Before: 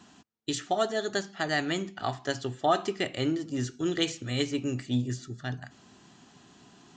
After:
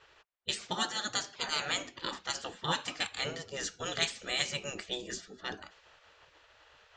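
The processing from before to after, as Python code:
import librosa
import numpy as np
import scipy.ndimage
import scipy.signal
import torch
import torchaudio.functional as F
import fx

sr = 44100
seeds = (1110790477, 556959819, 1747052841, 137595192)

y = fx.spec_gate(x, sr, threshold_db=-15, keep='weak')
y = fx.env_lowpass(y, sr, base_hz=2300.0, full_db=-36.0)
y = F.gain(torch.from_numpy(y), 5.0).numpy()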